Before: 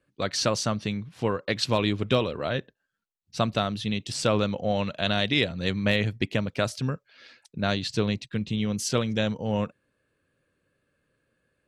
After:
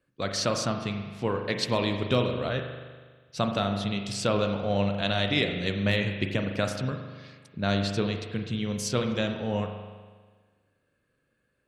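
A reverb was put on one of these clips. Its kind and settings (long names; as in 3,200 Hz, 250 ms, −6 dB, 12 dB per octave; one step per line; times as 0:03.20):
spring reverb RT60 1.5 s, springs 40 ms, chirp 65 ms, DRR 4.5 dB
level −2.5 dB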